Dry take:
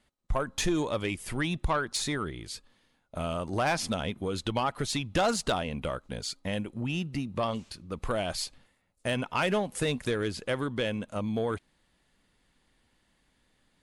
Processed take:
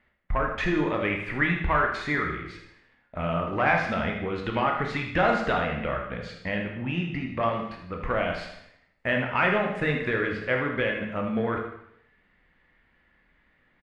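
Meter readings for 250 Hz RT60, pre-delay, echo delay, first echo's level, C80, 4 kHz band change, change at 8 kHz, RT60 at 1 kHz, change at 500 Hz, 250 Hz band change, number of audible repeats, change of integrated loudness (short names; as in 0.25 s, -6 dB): 0.75 s, 7 ms, 78 ms, -10.0 dB, 7.5 dB, -4.0 dB, under -15 dB, 0.75 s, +3.5 dB, +3.0 dB, 1, +4.5 dB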